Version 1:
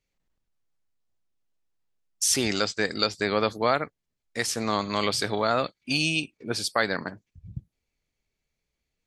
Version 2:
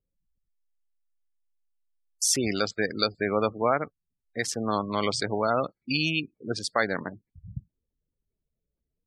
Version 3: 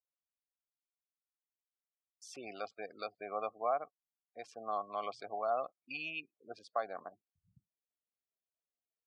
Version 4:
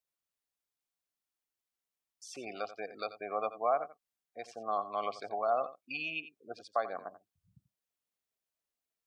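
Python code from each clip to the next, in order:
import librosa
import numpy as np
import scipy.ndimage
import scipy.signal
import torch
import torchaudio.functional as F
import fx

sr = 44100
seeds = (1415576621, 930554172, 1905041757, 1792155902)

y1 = fx.wiener(x, sr, points=15)
y1 = fx.spec_gate(y1, sr, threshold_db=-20, keep='strong')
y2 = fx.vowel_filter(y1, sr, vowel='a')
y2 = y2 * librosa.db_to_amplitude(-1.5)
y3 = y2 + 10.0 ** (-14.0 / 20.0) * np.pad(y2, (int(87 * sr / 1000.0), 0))[:len(y2)]
y3 = y3 * librosa.db_to_amplitude(3.5)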